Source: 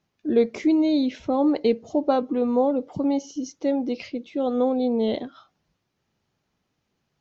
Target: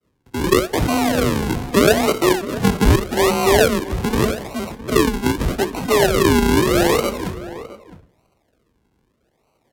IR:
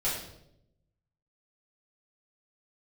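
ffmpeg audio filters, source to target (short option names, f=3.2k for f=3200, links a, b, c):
-filter_complex "[0:a]acrossover=split=3600[a][b];[b]acompressor=threshold=-51dB:ratio=4:attack=1:release=60[c];[a][c]amix=inputs=2:normalize=0,lowpass=5.9k,asplit=2[d][e];[e]highpass=f=720:p=1,volume=28dB,asoftclip=type=tanh:threshold=-8.5dB[f];[d][f]amix=inputs=2:normalize=0,lowpass=f=2.6k:p=1,volume=-6dB,highpass=590,agate=range=-33dB:threshold=-54dB:ratio=3:detection=peak,acrusher=samples=37:mix=1:aa=0.000001:lfo=1:lforange=37:lforate=1.1,afreqshift=28,asplit=2[g][h];[h]adelay=489.8,volume=-15dB,highshelf=f=4k:g=-11[i];[g][i]amix=inputs=2:normalize=0,asplit=2[j][k];[1:a]atrim=start_sample=2205[l];[k][l]afir=irnorm=-1:irlink=0,volume=-27.5dB[m];[j][m]amix=inputs=2:normalize=0,asetrate=32667,aresample=44100,volume=5dB"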